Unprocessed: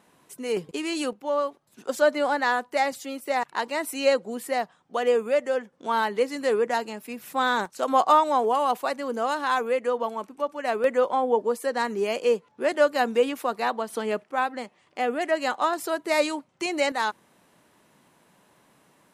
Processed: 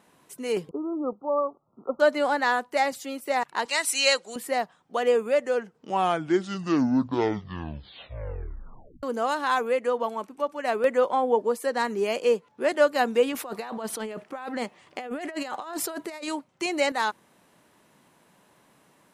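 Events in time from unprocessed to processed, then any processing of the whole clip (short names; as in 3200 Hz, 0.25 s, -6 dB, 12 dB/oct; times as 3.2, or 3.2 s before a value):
0.69–2 brick-wall FIR low-pass 1400 Hz
3.65–4.36 weighting filter ITU-R 468
5.36 tape stop 3.67 s
13.32–16.28 negative-ratio compressor -34 dBFS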